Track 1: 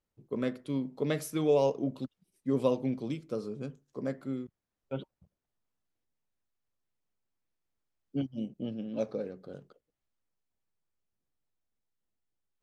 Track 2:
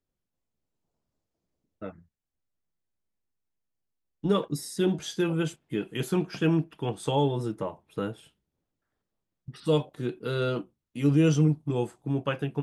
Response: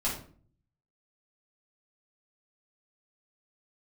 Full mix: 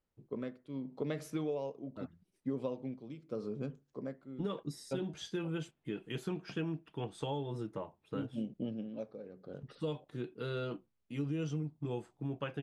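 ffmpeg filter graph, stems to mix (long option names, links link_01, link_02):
-filter_complex "[0:a]tremolo=f=0.82:d=0.79,volume=0.5dB[link_01];[1:a]adynamicequalizer=threshold=0.00501:dfrequency=2200:dqfactor=0.7:tfrequency=2200:tqfactor=0.7:attack=5:release=100:ratio=0.375:range=2:mode=boostabove:tftype=highshelf,adelay=150,volume=-8.5dB[link_02];[link_01][link_02]amix=inputs=2:normalize=0,aemphasis=mode=reproduction:type=50fm,acompressor=threshold=-33dB:ratio=6"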